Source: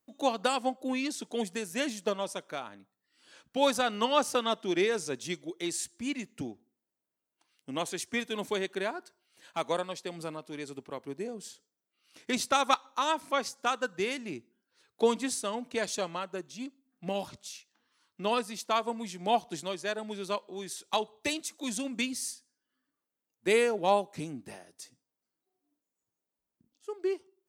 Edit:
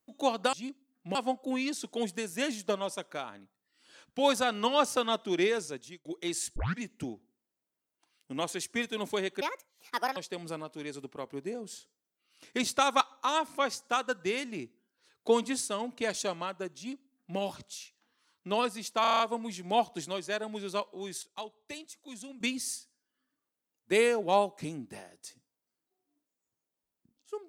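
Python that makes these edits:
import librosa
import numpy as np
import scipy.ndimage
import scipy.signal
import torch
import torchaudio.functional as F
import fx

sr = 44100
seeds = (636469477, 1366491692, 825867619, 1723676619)

y = fx.edit(x, sr, fx.fade_out_span(start_s=4.88, length_s=0.55),
    fx.tape_start(start_s=5.94, length_s=0.25),
    fx.speed_span(start_s=8.79, length_s=1.11, speed=1.47),
    fx.duplicate(start_s=16.5, length_s=0.62, to_s=0.53),
    fx.stutter(start_s=18.75, slice_s=0.03, count=7),
    fx.clip_gain(start_s=20.78, length_s=1.18, db=-11.0), tone=tone)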